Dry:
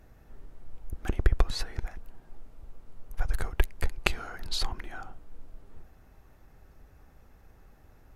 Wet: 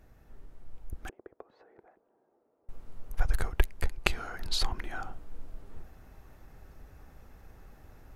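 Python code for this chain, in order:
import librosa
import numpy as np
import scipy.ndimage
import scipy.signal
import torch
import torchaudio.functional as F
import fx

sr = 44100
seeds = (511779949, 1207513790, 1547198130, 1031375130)

y = fx.rider(x, sr, range_db=10, speed_s=0.5)
y = fx.ladder_bandpass(y, sr, hz=540.0, resonance_pct=30, at=(1.09, 2.69))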